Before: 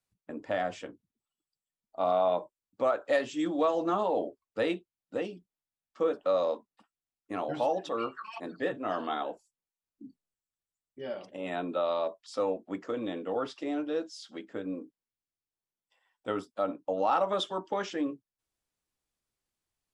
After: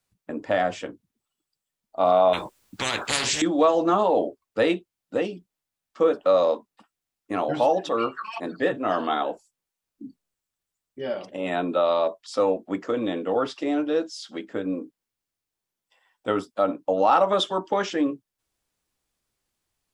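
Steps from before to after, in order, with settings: 2.33–3.42 spectral compressor 10:1; gain +8 dB

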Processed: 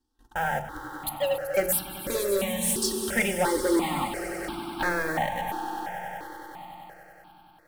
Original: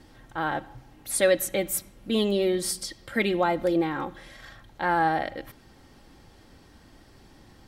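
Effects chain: 1.09–1.57 sine-wave speech; gate -47 dBFS, range -27 dB; transient shaper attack +6 dB, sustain 0 dB; in parallel at -8.5 dB: bit-crush 6-bit; on the sum: high shelf 2300 Hz +7 dB; soft clip -17.5 dBFS, distortion -8 dB; swelling echo 95 ms, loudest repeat 5, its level -15 dB; on a send at -9 dB: reverb RT60 0.45 s, pre-delay 3 ms; on the sum: step phaser 2.9 Hz 580–1900 Hz

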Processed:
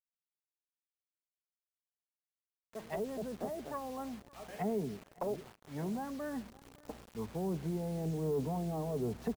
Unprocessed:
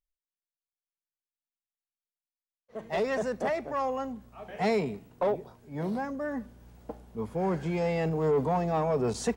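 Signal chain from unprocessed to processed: treble ducked by the level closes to 530 Hz, closed at -26 dBFS; dynamic EQ 520 Hz, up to -6 dB, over -46 dBFS, Q 4.4; bit-crush 8-bit; on a send: echo 0.56 s -23.5 dB; on the sum: gain -5 dB

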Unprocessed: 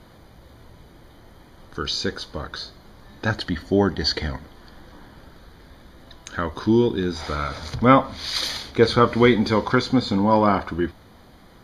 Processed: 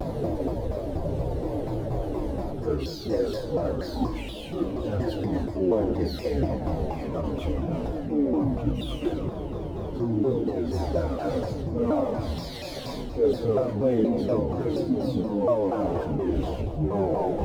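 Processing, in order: echoes that change speed 0.122 s, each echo -6 st, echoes 2, each echo -6 dB; on a send: thinning echo 67 ms, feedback 47%, high-pass 500 Hz, level -15 dB; on the sum: power-law curve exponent 0.5; reverse; compressor 8:1, threshold -21 dBFS, peak gain reduction 14.5 dB; reverse; FDN reverb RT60 0.75 s, low-frequency decay 1.5×, high-frequency decay 0.85×, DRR 4.5 dB; plain phase-vocoder stretch 1.5×; EQ curve 200 Hz 0 dB, 570 Hz +8 dB, 1300 Hz -14 dB; spectral freeze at 9.3, 0.65 s; shaped vibrato saw down 4.2 Hz, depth 250 cents; gain -3.5 dB

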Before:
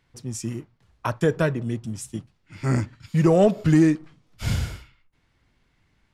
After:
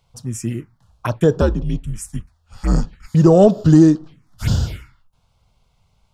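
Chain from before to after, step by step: envelope phaser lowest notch 300 Hz, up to 2200 Hz, full sweep at -21 dBFS; 1.41–3.15 frequency shift -82 Hz; gain +7 dB

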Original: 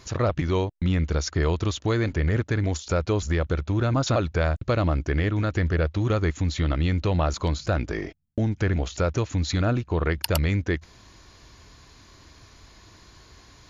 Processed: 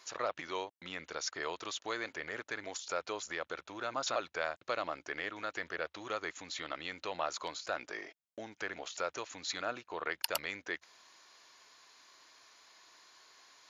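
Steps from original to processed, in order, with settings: HPF 700 Hz 12 dB/oct; gain -6 dB

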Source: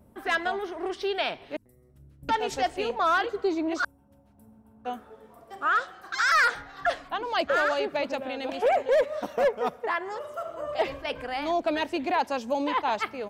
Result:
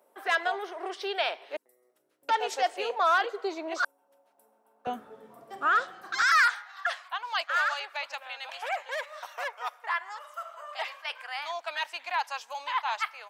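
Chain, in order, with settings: HPF 450 Hz 24 dB/oct, from 4.87 s 120 Hz, from 6.22 s 930 Hz

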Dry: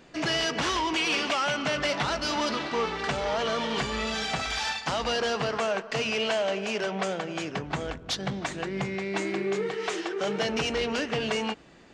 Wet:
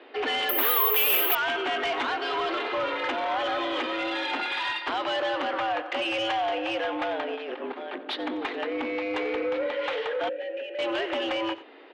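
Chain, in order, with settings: in parallel at 0 dB: limiter -25 dBFS, peak gain reduction 8.5 dB; 7.33–8.01 on the sum: negative-ratio compressor -31 dBFS, ratio -0.5; mistuned SSB +110 Hz 160–3600 Hz; added harmonics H 5 -18 dB, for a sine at -10.5 dBFS; on a send: echo 91 ms -17.5 dB; 0.49–1.35 on the sum: careless resampling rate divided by 3×, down none, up zero stuff; 10.29–10.79 vowel filter e; core saturation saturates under 1500 Hz; gain -5.5 dB

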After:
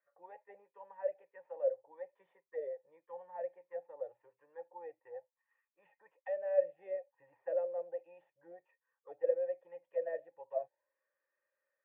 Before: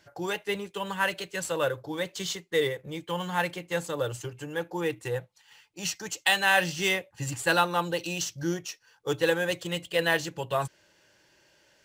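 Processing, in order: auto-wah 600–1200 Hz, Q 14, down, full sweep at -21.5 dBFS; vocal tract filter e; gain +11 dB

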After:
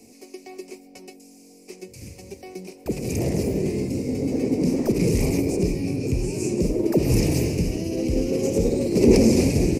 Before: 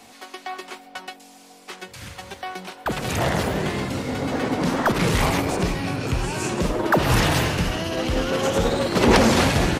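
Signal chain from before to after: EQ curve 160 Hz 0 dB, 260 Hz +3 dB, 420 Hz +4 dB, 750 Hz -14 dB, 1500 Hz -30 dB, 2400 Hz -5 dB, 3400 Hz -24 dB, 5000 Hz -2 dB

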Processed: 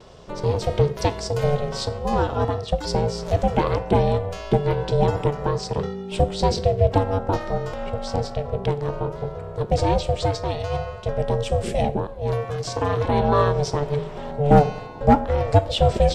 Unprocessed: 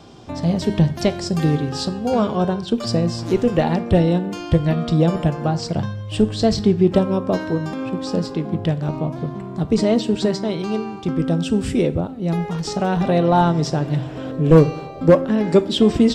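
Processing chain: vibrato 0.37 Hz 15 cents; ring modulator 290 Hz

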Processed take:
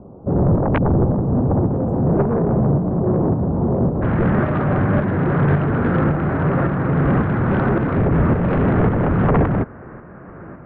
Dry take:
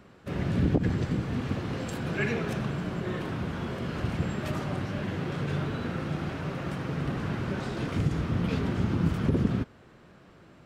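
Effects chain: inverse Chebyshev low-pass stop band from 1700 Hz, stop band 40 dB, from 4.01 s stop band from 3400 Hz; sine folder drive 15 dB, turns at -10.5 dBFS; tremolo saw up 1.8 Hz, depth 45%

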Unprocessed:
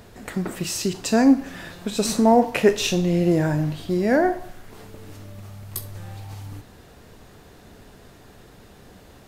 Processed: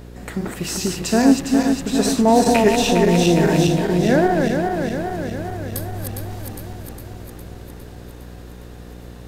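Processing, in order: regenerating reverse delay 0.204 s, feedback 79%, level -4 dB; buzz 60 Hz, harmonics 9, -39 dBFS -5 dB/oct; 2.46–3.68 three-band squash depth 70%; gain +1 dB

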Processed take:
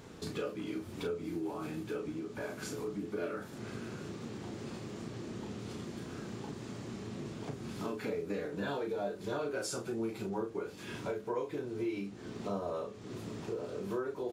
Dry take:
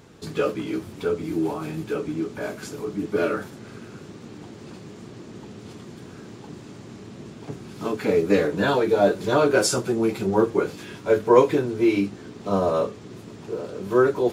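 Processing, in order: compressor 4:1, threshold -36 dBFS, peak gain reduction 21.5 dB; doubler 35 ms -6 dB; gain -2 dB

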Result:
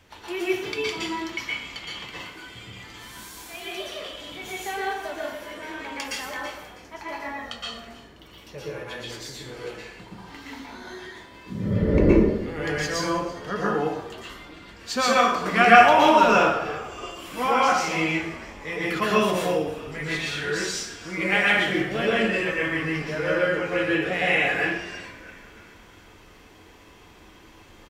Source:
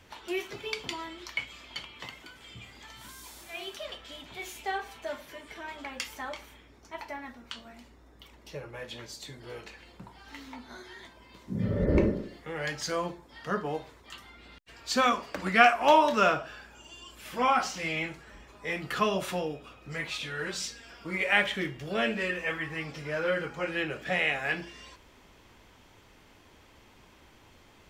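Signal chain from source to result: 7.2–7.69 comb 1.6 ms, depth 95%; frequency-shifting echo 0.325 s, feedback 54%, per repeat -80 Hz, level -18 dB; plate-style reverb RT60 0.69 s, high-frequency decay 0.75×, pre-delay 0.105 s, DRR -6 dB

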